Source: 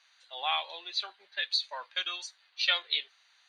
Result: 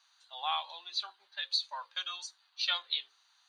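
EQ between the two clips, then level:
low shelf with overshoot 670 Hz −10 dB, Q 1.5
parametric band 2,100 Hz −11.5 dB 1 octave
mains-hum notches 60/120/180/240/300/360/420/480/540 Hz
0.0 dB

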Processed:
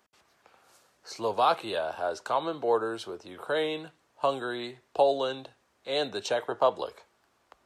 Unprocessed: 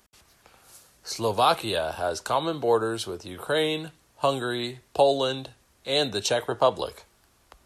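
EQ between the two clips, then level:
high-pass filter 490 Hz 6 dB per octave
high-shelf EQ 2,500 Hz −11 dB
parametric band 11,000 Hz −7.5 dB 0.39 octaves
0.0 dB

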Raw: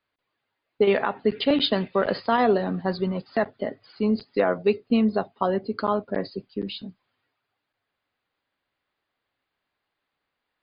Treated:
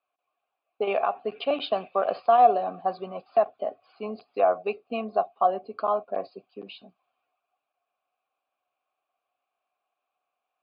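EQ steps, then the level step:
formant filter a
+9.0 dB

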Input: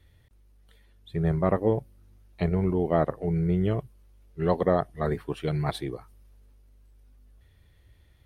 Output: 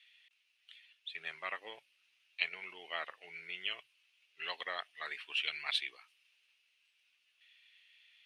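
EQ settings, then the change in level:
four-pole ladder band-pass 2,900 Hz, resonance 70%
+15.5 dB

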